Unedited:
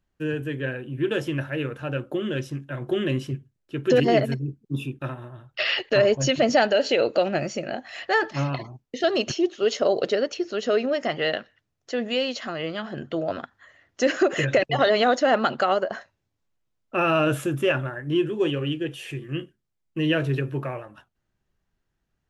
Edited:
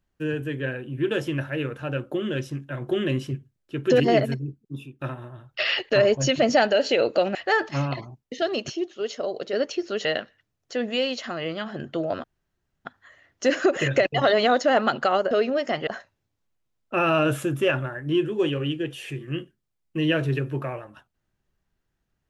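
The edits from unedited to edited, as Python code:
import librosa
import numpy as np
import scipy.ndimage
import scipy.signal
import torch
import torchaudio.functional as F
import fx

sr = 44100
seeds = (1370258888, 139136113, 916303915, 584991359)

y = fx.edit(x, sr, fx.fade_out_to(start_s=4.25, length_s=0.74, floor_db=-15.0),
    fx.cut(start_s=7.35, length_s=0.62),
    fx.fade_out_to(start_s=8.62, length_s=1.53, curve='qua', floor_db=-8.0),
    fx.move(start_s=10.67, length_s=0.56, to_s=15.88),
    fx.insert_room_tone(at_s=13.42, length_s=0.61), tone=tone)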